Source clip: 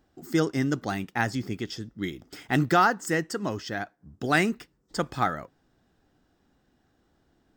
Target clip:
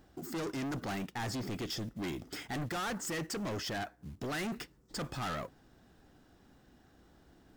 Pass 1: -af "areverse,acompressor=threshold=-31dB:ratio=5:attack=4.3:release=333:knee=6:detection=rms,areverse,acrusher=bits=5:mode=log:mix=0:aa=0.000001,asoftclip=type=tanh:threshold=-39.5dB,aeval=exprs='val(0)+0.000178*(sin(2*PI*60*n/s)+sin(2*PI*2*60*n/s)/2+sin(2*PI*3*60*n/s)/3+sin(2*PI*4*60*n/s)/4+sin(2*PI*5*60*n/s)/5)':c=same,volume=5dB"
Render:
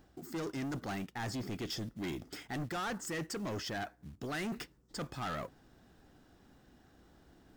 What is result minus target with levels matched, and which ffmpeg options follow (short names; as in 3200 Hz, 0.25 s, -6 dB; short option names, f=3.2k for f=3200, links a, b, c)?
compressor: peak gain reduction +6.5 dB
-af "areverse,acompressor=threshold=-23dB:ratio=5:attack=4.3:release=333:knee=6:detection=rms,areverse,acrusher=bits=5:mode=log:mix=0:aa=0.000001,asoftclip=type=tanh:threshold=-39.5dB,aeval=exprs='val(0)+0.000178*(sin(2*PI*60*n/s)+sin(2*PI*2*60*n/s)/2+sin(2*PI*3*60*n/s)/3+sin(2*PI*4*60*n/s)/4+sin(2*PI*5*60*n/s)/5)':c=same,volume=5dB"